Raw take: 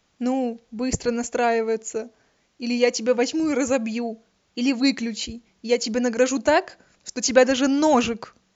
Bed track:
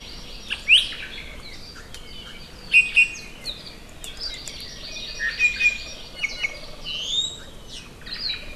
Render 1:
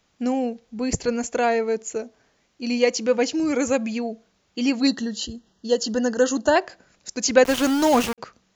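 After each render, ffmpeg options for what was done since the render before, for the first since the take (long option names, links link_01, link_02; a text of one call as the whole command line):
ffmpeg -i in.wav -filter_complex "[0:a]asettb=1/sr,asplit=3[link_01][link_02][link_03];[link_01]atrim=end=4.874[link_04];[link_02]atrim=start=4.87:end=6.56,asetpts=PTS-STARTPTS,afade=type=in:duration=0.004:curve=qsin,afade=type=out:start_time=1.686:duration=0.004:curve=qsin,asuperstop=centerf=2300:order=20:qfactor=3.1[link_05];[link_03]atrim=start=6.556[link_06];[link_04][link_05]acrossfade=duration=0.004:curve1=hsin:curve2=qsin[link_07];[link_07][link_06]acrossfade=duration=0.004:curve1=qsin:curve2=hsin,asettb=1/sr,asplit=3[link_08][link_09][link_10];[link_08]atrim=end=7.444[link_11];[link_09]atrim=start=7.44:end=8.18,asetpts=PTS-STARTPTS,afade=type=in:duration=0.004:curve=qsin,afade=type=out:start_time=0.736:duration=0.004:curve=qsin,aeval=exprs='val(0)*gte(abs(val(0)),0.0708)':channel_layout=same[link_12];[link_10]atrim=start=8.176[link_13];[link_11][link_12]acrossfade=duration=0.004:curve1=hsin:curve2=qsin[link_14];[link_14][link_13]acrossfade=duration=0.004:curve1=qsin:curve2=hsin" out.wav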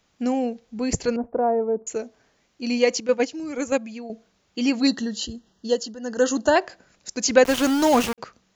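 ffmpeg -i in.wav -filter_complex "[0:a]asettb=1/sr,asplit=3[link_01][link_02][link_03];[link_01]atrim=end=1.164[link_04];[link_02]atrim=start=1.16:end=1.87,asetpts=PTS-STARTPTS,afade=type=in:duration=0.004:curve=qsin,afade=type=out:start_time=0.706:duration=0.004:curve=qsin,lowpass=frequency=1000:width=0.5412,lowpass=frequency=1000:width=1.3066[link_05];[link_03]atrim=start=1.866[link_06];[link_04][link_05]acrossfade=duration=0.004:curve1=hsin:curve2=qsin[link_07];[link_07][link_06]acrossfade=duration=0.004:curve1=qsin:curve2=hsin,asettb=1/sr,asplit=3[link_08][link_09][link_10];[link_08]atrim=end=3.004[link_11];[link_09]atrim=start=3:end=4.1,asetpts=PTS-STARTPTS,afade=type=in:duration=0.004:curve=qsin,afade=type=out:start_time=1.096:duration=0.004:curve=qsin,agate=range=-9dB:threshold=-21dB:ratio=16:release=100:detection=peak[link_12];[link_10]atrim=start=4.096[link_13];[link_11][link_12]acrossfade=duration=0.004:curve1=hsin:curve2=qsin[link_14];[link_14][link_13]acrossfade=duration=0.004:curve1=qsin:curve2=hsin,asplit=3[link_15][link_16][link_17];[link_15]atrim=end=5.95,asetpts=PTS-STARTPTS,afade=type=out:start_time=5.69:duration=0.26:silence=0.16788[link_18];[link_16]atrim=start=5.95:end=5.99,asetpts=PTS-STARTPTS,volume=-15.5dB[link_19];[link_17]atrim=start=5.99,asetpts=PTS-STARTPTS,afade=type=in:duration=0.26:silence=0.16788[link_20];[link_18][link_19][link_20]concat=n=3:v=0:a=1" out.wav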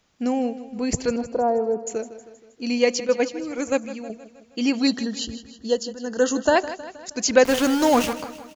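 ffmpeg -i in.wav -af "aecho=1:1:158|316|474|632|790:0.188|0.104|0.057|0.0313|0.0172" out.wav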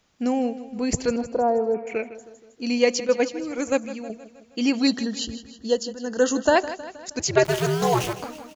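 ffmpeg -i in.wav -filter_complex "[0:a]asettb=1/sr,asplit=3[link_01][link_02][link_03];[link_01]atrim=end=1.744[link_04];[link_02]atrim=start=1.74:end=2.15,asetpts=PTS-STARTPTS,afade=type=in:duration=0.004:curve=qsin,afade=type=out:start_time=0.406:duration=0.004:curve=qsin,lowpass=frequency=2300:width_type=q:width=14[link_05];[link_03]atrim=start=2.146[link_06];[link_04][link_05]acrossfade=duration=0.004:curve1=hsin:curve2=qsin[link_07];[link_07][link_06]acrossfade=duration=0.004:curve1=qsin:curve2=hsin,asettb=1/sr,asplit=3[link_08][link_09][link_10];[link_08]atrim=end=7.194[link_11];[link_09]atrim=start=7.19:end=8.23,asetpts=PTS-STARTPTS,afade=type=in:duration=0.004:curve=qsin,afade=type=out:start_time=1.036:duration=0.004:curve=qsin,aeval=exprs='val(0)*sin(2*PI*120*n/s)':channel_layout=same[link_12];[link_10]atrim=start=8.226[link_13];[link_11][link_12]acrossfade=duration=0.004:curve1=hsin:curve2=qsin[link_14];[link_14][link_13]acrossfade=duration=0.004:curve1=qsin:curve2=hsin" out.wav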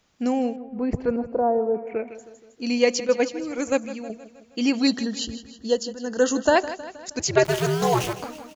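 ffmpeg -i in.wav -filter_complex "[0:a]asettb=1/sr,asplit=3[link_01][link_02][link_03];[link_01]atrim=end=0.564[link_04];[link_02]atrim=start=0.56:end=2.08,asetpts=PTS-STARTPTS,afade=type=in:duration=0.004:curve=qsin,afade=type=out:start_time=1.516:duration=0.004:curve=qsin,lowpass=1400[link_05];[link_03]atrim=start=2.076[link_06];[link_04][link_05]acrossfade=duration=0.004:curve1=hsin:curve2=qsin[link_07];[link_07][link_06]acrossfade=duration=0.004:curve1=qsin:curve2=hsin" out.wav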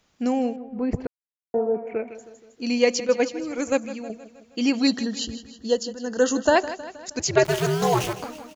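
ffmpeg -i in.wav -filter_complex "[0:a]asplit=3[link_01][link_02][link_03];[link_01]atrim=end=1.07,asetpts=PTS-STARTPTS,afade=type=out:start_time=1.066:duration=0.004:curve=hsin[link_04];[link_02]atrim=start=1.07:end=1.54,asetpts=PTS-STARTPTS,volume=0[link_05];[link_03]atrim=start=1.54,asetpts=PTS-STARTPTS,afade=type=in:duration=0.004:curve=hsin[link_06];[link_04][link_05][link_06]concat=n=3:v=0:a=1" out.wav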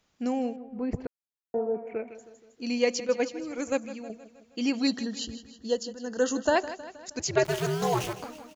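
ffmpeg -i in.wav -af "volume=-5.5dB" out.wav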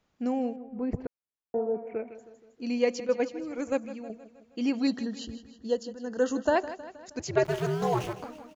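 ffmpeg -i in.wav -af "highshelf=frequency=2700:gain=-10" out.wav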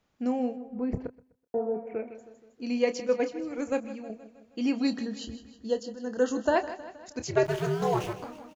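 ffmpeg -i in.wav -filter_complex "[0:a]asplit=2[link_01][link_02];[link_02]adelay=28,volume=-11dB[link_03];[link_01][link_03]amix=inputs=2:normalize=0,aecho=1:1:126|252|378:0.0794|0.0286|0.0103" out.wav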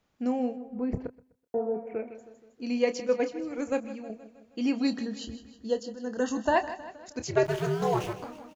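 ffmpeg -i in.wav -filter_complex "[0:a]asettb=1/sr,asplit=3[link_01][link_02][link_03];[link_01]atrim=end=6.204[link_04];[link_02]atrim=start=6.2:end=6.91,asetpts=PTS-STARTPTS,afade=type=in:duration=0.004:curve=qsin,afade=type=out:start_time=0.706:duration=0.004:curve=qsin,aecho=1:1:1.1:0.53,atrim=end_sample=31311[link_05];[link_03]atrim=start=6.906[link_06];[link_04][link_05]acrossfade=duration=0.004:curve1=hsin:curve2=qsin[link_07];[link_07][link_06]acrossfade=duration=0.004:curve1=qsin:curve2=hsin" out.wav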